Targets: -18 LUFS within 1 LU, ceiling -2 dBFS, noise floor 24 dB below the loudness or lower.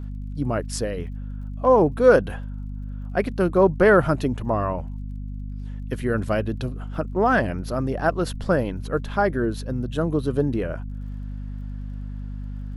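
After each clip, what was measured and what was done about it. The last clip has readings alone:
tick rate 25 per s; hum 50 Hz; highest harmonic 250 Hz; hum level -29 dBFS; loudness -22.5 LUFS; peak level -4.0 dBFS; loudness target -18.0 LUFS
-> de-click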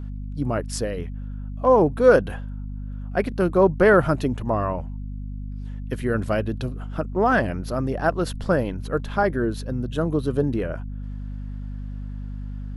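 tick rate 0 per s; hum 50 Hz; highest harmonic 250 Hz; hum level -29 dBFS
-> de-hum 50 Hz, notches 5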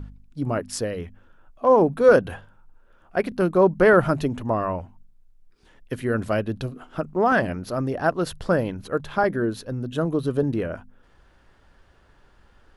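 hum not found; loudness -23.0 LUFS; peak level -4.5 dBFS; loudness target -18.0 LUFS
-> trim +5 dB; peak limiter -2 dBFS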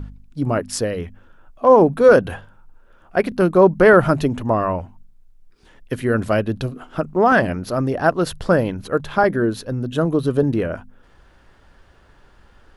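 loudness -18.0 LUFS; peak level -2.0 dBFS; noise floor -52 dBFS

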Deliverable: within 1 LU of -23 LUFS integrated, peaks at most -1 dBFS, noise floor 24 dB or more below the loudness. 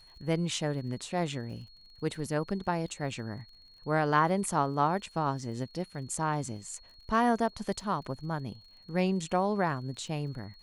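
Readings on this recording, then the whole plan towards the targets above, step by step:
tick rate 48 per s; steady tone 4.3 kHz; tone level -55 dBFS; loudness -31.5 LUFS; peak level -12.5 dBFS; loudness target -23.0 LUFS
-> de-click; band-stop 4.3 kHz, Q 30; trim +8.5 dB

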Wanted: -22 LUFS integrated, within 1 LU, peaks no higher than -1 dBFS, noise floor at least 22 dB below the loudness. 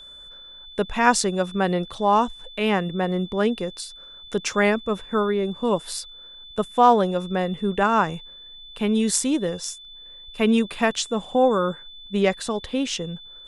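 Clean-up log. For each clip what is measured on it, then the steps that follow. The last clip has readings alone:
steady tone 3.5 kHz; tone level -41 dBFS; loudness -23.0 LUFS; peak level -3.5 dBFS; loudness target -22.0 LUFS
-> band-stop 3.5 kHz, Q 30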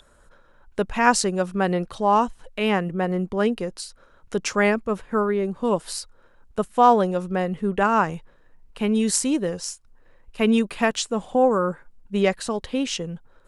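steady tone not found; loudness -23.0 LUFS; peak level -3.5 dBFS; loudness target -22.0 LUFS
-> trim +1 dB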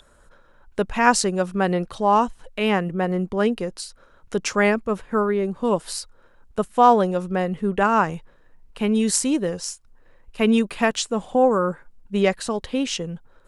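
loudness -22.0 LUFS; peak level -2.5 dBFS; noise floor -55 dBFS

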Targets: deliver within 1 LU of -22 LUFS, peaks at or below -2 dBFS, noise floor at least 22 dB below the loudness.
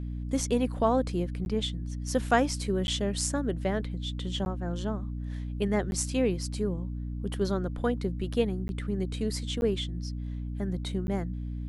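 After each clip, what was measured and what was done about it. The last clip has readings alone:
dropouts 7; longest dropout 11 ms; hum 60 Hz; highest harmonic 300 Hz; hum level -32 dBFS; loudness -30.5 LUFS; peak level -9.0 dBFS; loudness target -22.0 LUFS
-> interpolate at 1.45/2.87/4.45/5.91/8.68/9.61/11.07 s, 11 ms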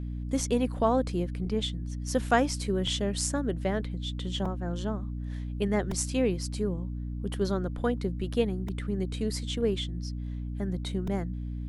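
dropouts 0; hum 60 Hz; highest harmonic 300 Hz; hum level -32 dBFS
-> de-hum 60 Hz, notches 5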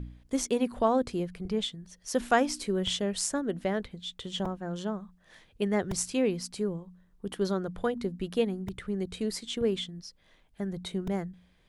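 hum not found; loudness -31.5 LUFS; peak level -10.5 dBFS; loudness target -22.0 LUFS
-> trim +9.5 dB; peak limiter -2 dBFS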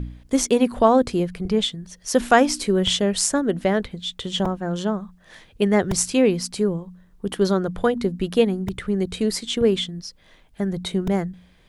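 loudness -22.0 LUFS; peak level -2.0 dBFS; noise floor -55 dBFS

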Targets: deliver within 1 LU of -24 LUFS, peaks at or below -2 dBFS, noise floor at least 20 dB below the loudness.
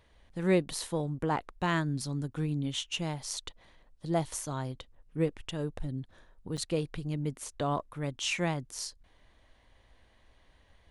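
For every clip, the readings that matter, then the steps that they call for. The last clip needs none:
dropouts 1; longest dropout 6.7 ms; loudness -33.5 LUFS; peak level -13.5 dBFS; loudness target -24.0 LUFS
-> interpolate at 6.57 s, 6.7 ms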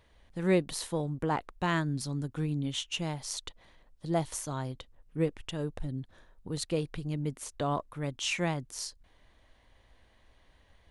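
dropouts 0; loudness -33.5 LUFS; peak level -13.5 dBFS; loudness target -24.0 LUFS
-> trim +9.5 dB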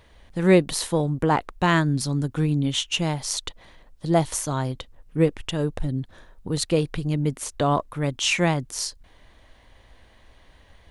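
loudness -24.0 LUFS; peak level -4.0 dBFS; noise floor -55 dBFS

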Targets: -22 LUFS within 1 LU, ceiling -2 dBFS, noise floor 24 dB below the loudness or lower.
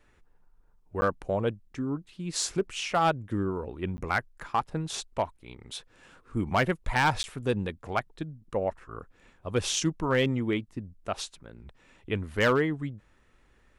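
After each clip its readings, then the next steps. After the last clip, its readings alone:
clipped samples 0.3%; clipping level -17.0 dBFS; dropouts 3; longest dropout 10 ms; loudness -30.0 LUFS; peak level -17.0 dBFS; loudness target -22.0 LUFS
-> clip repair -17 dBFS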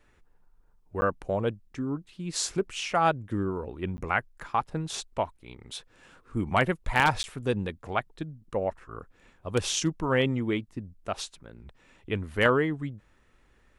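clipped samples 0.0%; dropouts 3; longest dropout 10 ms
-> interpolate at 1.01/3.97/7.23 s, 10 ms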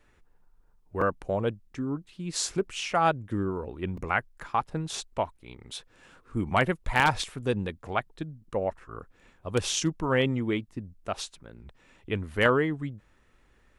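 dropouts 0; loudness -29.5 LUFS; peak level -8.0 dBFS; loudness target -22.0 LUFS
-> trim +7.5 dB; peak limiter -2 dBFS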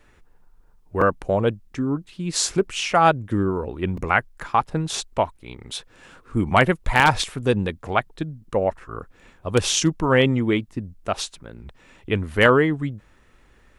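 loudness -22.0 LUFS; peak level -2.0 dBFS; noise floor -55 dBFS

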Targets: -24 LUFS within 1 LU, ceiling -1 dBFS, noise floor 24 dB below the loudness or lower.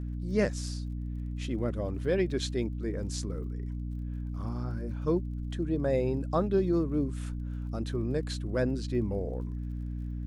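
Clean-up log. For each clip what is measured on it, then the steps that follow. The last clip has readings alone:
tick rate 42 per s; hum 60 Hz; highest harmonic 300 Hz; hum level -33 dBFS; loudness -32.0 LUFS; peak level -15.0 dBFS; loudness target -24.0 LUFS
-> de-click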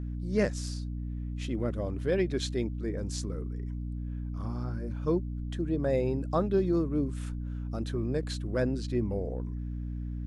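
tick rate 0 per s; hum 60 Hz; highest harmonic 300 Hz; hum level -33 dBFS
-> de-hum 60 Hz, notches 5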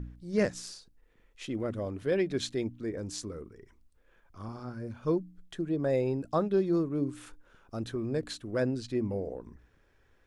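hum not found; loudness -32.5 LUFS; peak level -15.5 dBFS; loudness target -24.0 LUFS
-> trim +8.5 dB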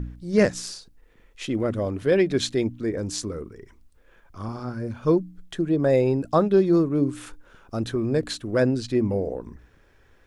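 loudness -24.0 LUFS; peak level -7.0 dBFS; noise floor -57 dBFS

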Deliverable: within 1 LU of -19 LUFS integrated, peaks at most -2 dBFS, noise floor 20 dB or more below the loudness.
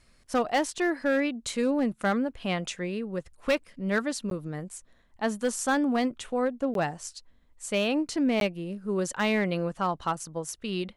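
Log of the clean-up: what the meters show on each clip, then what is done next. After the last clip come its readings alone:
clipped samples 0.7%; clipping level -18.5 dBFS; dropouts 3; longest dropout 12 ms; loudness -29.0 LUFS; peak level -18.5 dBFS; loudness target -19.0 LUFS
-> clip repair -18.5 dBFS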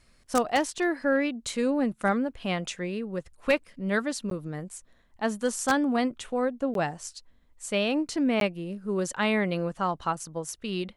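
clipped samples 0.0%; dropouts 3; longest dropout 12 ms
-> interpolate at 4.30/6.74/8.40 s, 12 ms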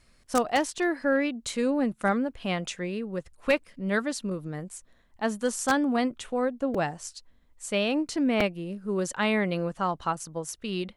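dropouts 0; loudness -28.5 LUFS; peak level -9.5 dBFS; loudness target -19.0 LUFS
-> trim +9.5 dB; peak limiter -2 dBFS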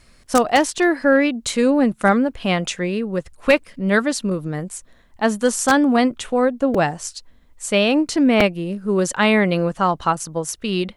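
loudness -19.0 LUFS; peak level -2.0 dBFS; noise floor -52 dBFS

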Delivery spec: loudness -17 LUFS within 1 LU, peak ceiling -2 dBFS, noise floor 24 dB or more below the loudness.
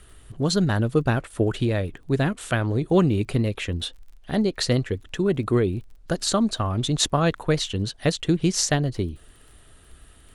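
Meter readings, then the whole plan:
tick rate 27 per s; loudness -24.0 LUFS; peak level -7.0 dBFS; loudness target -17.0 LUFS
-> de-click; trim +7 dB; peak limiter -2 dBFS

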